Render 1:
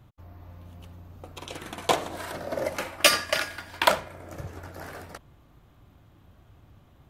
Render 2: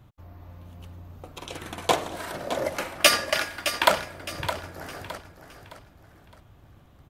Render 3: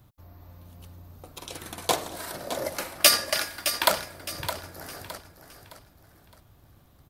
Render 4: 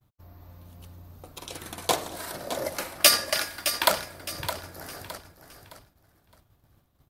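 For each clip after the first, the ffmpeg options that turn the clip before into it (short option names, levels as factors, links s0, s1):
-af "aecho=1:1:614|1228|1842|2456:0.316|0.111|0.0387|0.0136,volume=1.12"
-af "aexciter=amount=2.9:drive=2.4:freq=4000,volume=0.668"
-af "agate=range=0.0224:threshold=0.00355:ratio=3:detection=peak"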